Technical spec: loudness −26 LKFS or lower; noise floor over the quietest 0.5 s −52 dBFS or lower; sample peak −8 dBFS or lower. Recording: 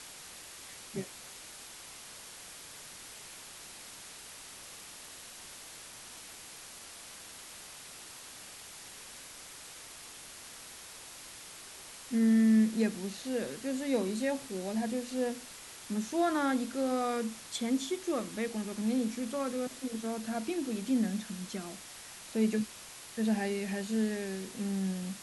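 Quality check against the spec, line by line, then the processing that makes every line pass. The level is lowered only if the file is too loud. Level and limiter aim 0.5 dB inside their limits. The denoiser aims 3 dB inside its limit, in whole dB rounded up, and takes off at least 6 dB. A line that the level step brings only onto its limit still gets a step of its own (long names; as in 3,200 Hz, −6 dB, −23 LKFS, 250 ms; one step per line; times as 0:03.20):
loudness −33.0 LKFS: in spec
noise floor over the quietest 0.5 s −49 dBFS: out of spec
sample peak −17.5 dBFS: in spec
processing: broadband denoise 6 dB, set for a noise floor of −49 dBFS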